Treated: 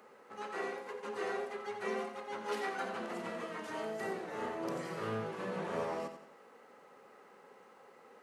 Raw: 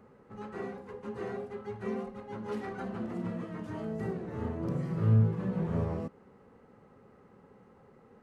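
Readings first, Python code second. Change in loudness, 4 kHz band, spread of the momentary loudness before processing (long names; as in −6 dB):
−5.5 dB, can't be measured, 15 LU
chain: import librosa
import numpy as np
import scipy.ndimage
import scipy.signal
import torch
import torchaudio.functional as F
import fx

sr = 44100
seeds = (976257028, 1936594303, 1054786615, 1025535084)

y = scipy.signal.sosfilt(scipy.signal.butter(2, 700.0, 'highpass', fs=sr, output='sos'), x)
y = fx.peak_eq(y, sr, hz=1100.0, db=-5.5, octaves=2.1)
y = fx.echo_feedback(y, sr, ms=88, feedback_pct=40, wet_db=-9.5)
y = F.gain(torch.from_numpy(y), 10.0).numpy()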